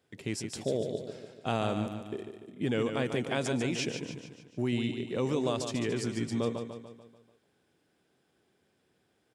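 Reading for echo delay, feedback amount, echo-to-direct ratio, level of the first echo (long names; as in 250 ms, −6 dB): 146 ms, 51%, −6.0 dB, −7.5 dB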